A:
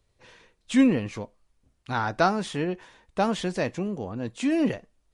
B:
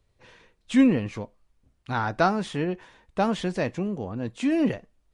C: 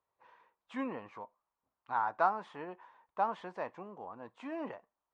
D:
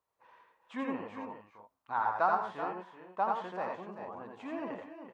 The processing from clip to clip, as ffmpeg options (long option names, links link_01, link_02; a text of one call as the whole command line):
ffmpeg -i in.wav -af "bass=frequency=250:gain=2,treble=frequency=4000:gain=-4" out.wav
ffmpeg -i in.wav -af "bandpass=frequency=980:width_type=q:width=3.2:csg=0" out.wav
ffmpeg -i in.wav -af "aecho=1:1:81|92|174|381|419:0.668|0.422|0.15|0.282|0.251" out.wav